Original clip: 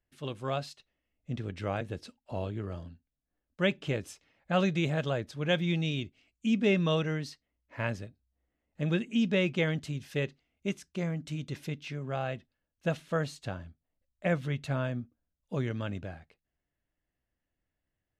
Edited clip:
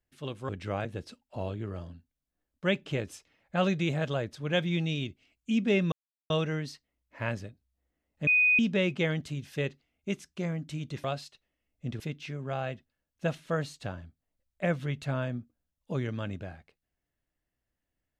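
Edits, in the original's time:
0.49–1.45 s: move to 11.62 s
6.88 s: insert silence 0.38 s
8.85–9.17 s: bleep 2.49 kHz -19.5 dBFS

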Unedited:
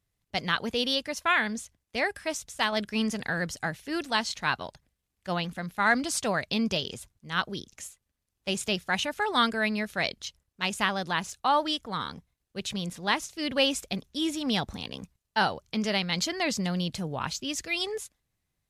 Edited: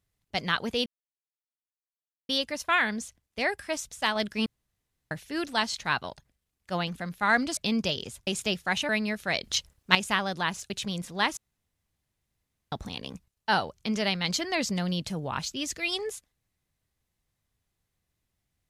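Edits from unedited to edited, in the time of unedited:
0.86 s: insert silence 1.43 s
3.03–3.68 s: room tone
6.14–6.44 s: delete
7.14–8.49 s: delete
9.11–9.59 s: delete
10.14–10.65 s: gain +10.5 dB
11.40–12.58 s: delete
13.25–14.60 s: room tone

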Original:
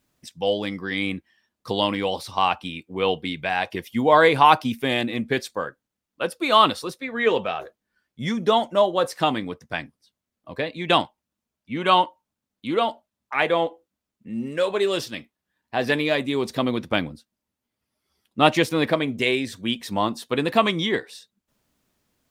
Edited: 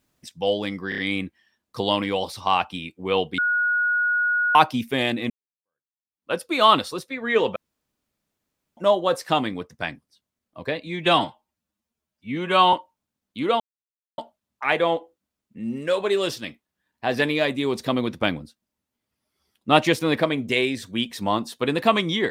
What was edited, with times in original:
0.89 s: stutter 0.03 s, 4 plays
3.29–4.46 s: bleep 1.45 kHz -18.5 dBFS
5.21–6.22 s: fade in exponential
7.47–8.68 s: room tone
10.75–12.01 s: stretch 1.5×
12.88 s: insert silence 0.58 s

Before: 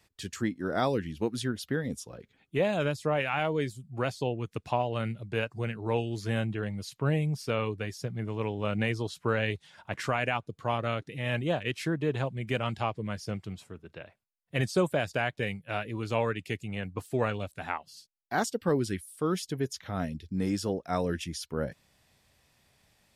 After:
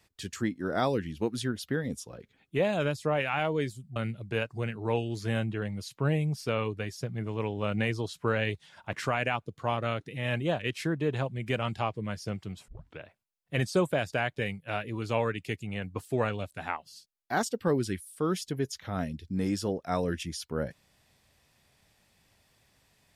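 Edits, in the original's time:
3.96–4.97 s: delete
13.69 s: tape start 0.31 s

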